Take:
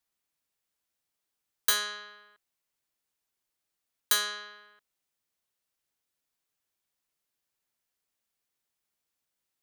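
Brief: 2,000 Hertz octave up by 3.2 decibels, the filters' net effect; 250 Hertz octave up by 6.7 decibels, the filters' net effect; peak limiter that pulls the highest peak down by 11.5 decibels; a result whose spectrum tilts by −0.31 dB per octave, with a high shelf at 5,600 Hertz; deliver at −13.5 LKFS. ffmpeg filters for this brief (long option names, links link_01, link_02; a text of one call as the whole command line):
ffmpeg -i in.wav -af "equalizer=frequency=250:width_type=o:gain=9,equalizer=frequency=2000:width_type=o:gain=4.5,highshelf=frequency=5600:gain=-5.5,volume=23.5dB,alimiter=limit=-0.5dB:level=0:latency=1" out.wav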